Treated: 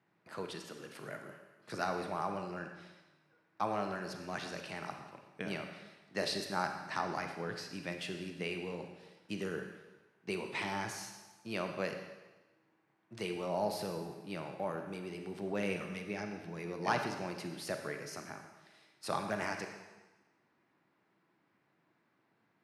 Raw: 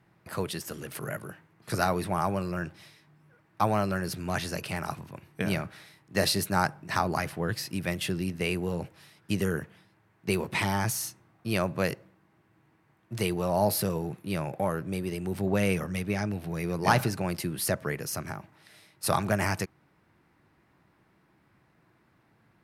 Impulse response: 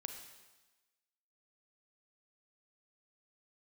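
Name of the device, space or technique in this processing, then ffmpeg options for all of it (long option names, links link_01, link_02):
supermarket ceiling speaker: -filter_complex "[0:a]highpass=200,lowpass=6400[link_01];[1:a]atrim=start_sample=2205[link_02];[link_01][link_02]afir=irnorm=-1:irlink=0,volume=-5dB"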